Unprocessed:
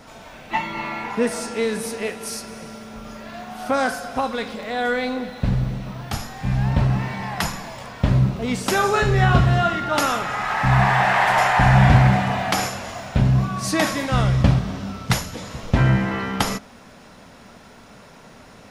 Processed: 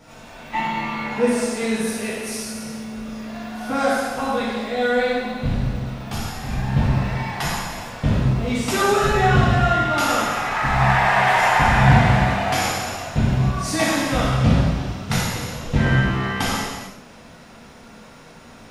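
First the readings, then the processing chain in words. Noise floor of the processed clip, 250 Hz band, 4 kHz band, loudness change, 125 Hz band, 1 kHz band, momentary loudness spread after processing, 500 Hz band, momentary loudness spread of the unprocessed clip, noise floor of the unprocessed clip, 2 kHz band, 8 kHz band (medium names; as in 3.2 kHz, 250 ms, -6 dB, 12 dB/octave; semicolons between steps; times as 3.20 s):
-44 dBFS, +1.0 dB, +1.5 dB, +0.5 dB, -1.5 dB, +1.0 dB, 13 LU, +2.0 dB, 15 LU, -46 dBFS, +1.5 dB, +2.0 dB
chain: gated-style reverb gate 470 ms falling, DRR -8 dB; trim -7 dB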